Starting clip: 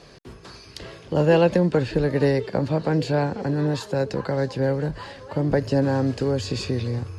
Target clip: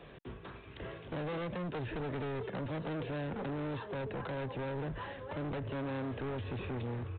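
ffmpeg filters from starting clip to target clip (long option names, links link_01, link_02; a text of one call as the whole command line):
ffmpeg -i in.wav -filter_complex "[0:a]acrossover=split=200|2500[link_01][link_02][link_03];[link_01]acompressor=threshold=-30dB:ratio=4[link_04];[link_02]acompressor=threshold=-24dB:ratio=4[link_05];[link_03]acompressor=threshold=-50dB:ratio=4[link_06];[link_04][link_05][link_06]amix=inputs=3:normalize=0,aresample=8000,asoftclip=type=hard:threshold=-32dB,aresample=44100,volume=-4dB" out.wav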